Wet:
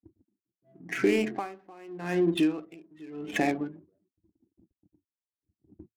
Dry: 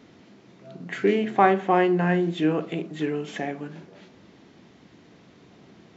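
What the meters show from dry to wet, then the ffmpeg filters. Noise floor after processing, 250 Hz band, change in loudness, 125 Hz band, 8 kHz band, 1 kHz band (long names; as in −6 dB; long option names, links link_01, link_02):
below −85 dBFS, −3.5 dB, −5.0 dB, −9.5 dB, can't be measured, −13.5 dB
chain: -filter_complex "[0:a]asplit=2[link_01][link_02];[link_02]alimiter=limit=-15dB:level=0:latency=1,volume=-1dB[link_03];[link_01][link_03]amix=inputs=2:normalize=0,lowshelf=frequency=110:width_type=q:width=1.5:gain=10,afftdn=noise_reduction=30:noise_floor=-35,equalizer=frequency=315:width_type=o:width=0.33:gain=10,equalizer=frequency=800:width_type=o:width=0.33:gain=3,equalizer=frequency=1250:width_type=o:width=0.33:gain=6,equalizer=frequency=2500:width_type=o:width=0.33:gain=11,equalizer=frequency=4000:width_type=o:width=0.33:gain=7,agate=range=-51dB:threshold=-46dB:ratio=16:detection=peak,aexciter=amount=13:drive=1.6:freq=5400,acompressor=threshold=-23dB:ratio=2.5,aresample=32000,aresample=44100,adynamicsmooth=sensitivity=6.5:basefreq=800,aeval=exprs='val(0)*pow(10,-27*(0.5-0.5*cos(2*PI*0.86*n/s))/20)':channel_layout=same"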